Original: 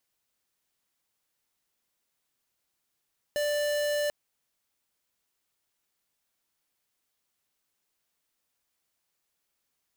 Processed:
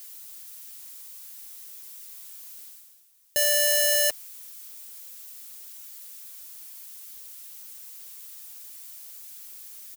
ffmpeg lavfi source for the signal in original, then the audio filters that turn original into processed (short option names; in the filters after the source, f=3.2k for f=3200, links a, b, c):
-f lavfi -i "aevalsrc='0.0398*(2*lt(mod(589*t,1),0.5)-1)':d=0.74:s=44100"
-af "aecho=1:1:6.2:0.32,areverse,acompressor=mode=upward:threshold=-45dB:ratio=2.5,areverse,crystalizer=i=5:c=0"